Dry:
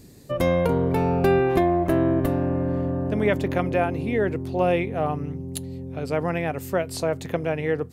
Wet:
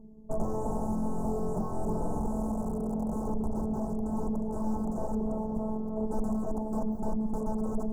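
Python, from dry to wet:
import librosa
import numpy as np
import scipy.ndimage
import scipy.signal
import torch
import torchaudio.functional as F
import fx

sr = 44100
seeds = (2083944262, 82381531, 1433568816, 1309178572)

y = fx.cheby_harmonics(x, sr, harmonics=(2, 3, 6, 7), levels_db=(-22, -28, -8, -28), full_scale_db=-8.5)
y = fx.echo_split(y, sr, split_hz=350.0, low_ms=132, high_ms=314, feedback_pct=52, wet_db=-8.0)
y = fx.robotise(y, sr, hz=217.0)
y = (np.mod(10.0 ** (13.5 / 20.0) * y + 1.0, 2.0) - 1.0) / 10.0 ** (13.5 / 20.0)
y = fx.air_absorb(y, sr, metres=280.0)
y = fx.echo_feedback(y, sr, ms=478, feedback_pct=28, wet_db=-16.5)
y = np.clip(y, -10.0 ** (-25.0 / 20.0), 10.0 ** (-25.0 / 20.0))
y = scipy.signal.sosfilt(scipy.signal.ellip(3, 1.0, 70, [870.0, 7400.0], 'bandstop', fs=sr, output='sos'), y)
y = fx.bass_treble(y, sr, bass_db=7, treble_db=-4)
y = fx.rider(y, sr, range_db=4, speed_s=0.5)
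y = F.gain(torch.from_numpy(y), -2.5).numpy()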